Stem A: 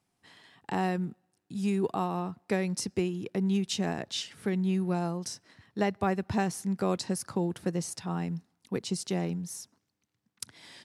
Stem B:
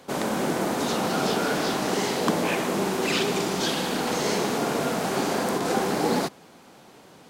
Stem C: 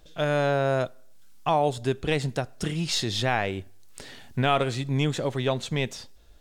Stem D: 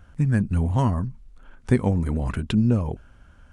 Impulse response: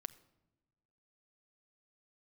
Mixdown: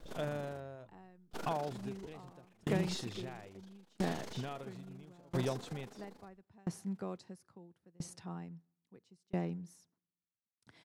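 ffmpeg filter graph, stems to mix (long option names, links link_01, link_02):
-filter_complex "[0:a]highshelf=frequency=3400:gain=-9.5,adelay=200,volume=-5.5dB,asplit=2[link_01][link_02];[link_02]volume=-7dB[link_03];[1:a]tremolo=f=25:d=0.857,volume=-13.5dB,asplit=3[link_04][link_05][link_06];[link_04]atrim=end=0.6,asetpts=PTS-STARTPTS,afade=type=out:start_time=0.596:duration=0.004:curve=hsin[link_07];[link_05]atrim=start=0.6:end=1.31,asetpts=PTS-STARTPTS,volume=0[link_08];[link_06]atrim=start=1.31,asetpts=PTS-STARTPTS,afade=type=in:duration=0.004:curve=hsin[link_09];[link_07][link_08][link_09]concat=n=3:v=0:a=1[link_10];[2:a]tiltshelf=frequency=970:gain=3.5,acompressor=threshold=-36dB:ratio=2,volume=0dB,asplit=2[link_11][link_12];[3:a]volume=-16dB[link_13];[link_12]apad=whole_len=155634[link_14];[link_13][link_14]sidechaincompress=threshold=-38dB:ratio=8:attack=16:release=678[link_15];[4:a]atrim=start_sample=2205[link_16];[link_03][link_16]afir=irnorm=-1:irlink=0[link_17];[link_01][link_10][link_11][link_15][link_17]amix=inputs=5:normalize=0,aeval=exprs='val(0)*pow(10,-32*if(lt(mod(0.75*n/s,1),2*abs(0.75)/1000),1-mod(0.75*n/s,1)/(2*abs(0.75)/1000),(mod(0.75*n/s,1)-2*abs(0.75)/1000)/(1-2*abs(0.75)/1000))/20)':channel_layout=same"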